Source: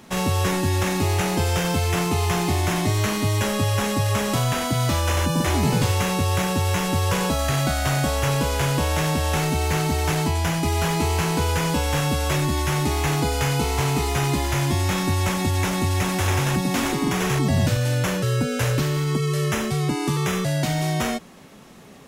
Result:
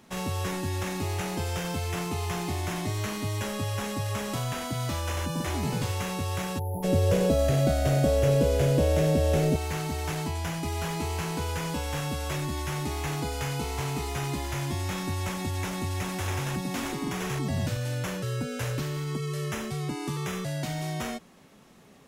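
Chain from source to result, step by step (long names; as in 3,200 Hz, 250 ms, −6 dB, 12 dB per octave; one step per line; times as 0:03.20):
0:06.59–0:06.83: time-frequency box erased 980–10,000 Hz
0:06.84–0:09.56: low shelf with overshoot 740 Hz +7.5 dB, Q 3
level −9 dB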